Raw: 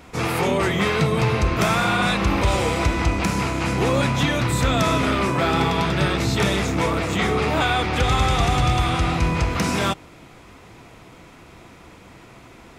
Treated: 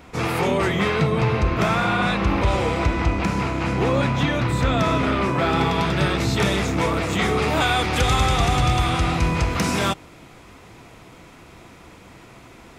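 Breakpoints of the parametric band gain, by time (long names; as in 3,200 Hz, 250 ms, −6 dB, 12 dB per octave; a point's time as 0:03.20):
parametric band 12,000 Hz 1.9 octaves
0:00.69 −4 dB
0:01.13 −11.5 dB
0:05.13 −11.5 dB
0:05.87 −1.5 dB
0:06.86 −1.5 dB
0:07.97 +8 dB
0:08.35 +1.5 dB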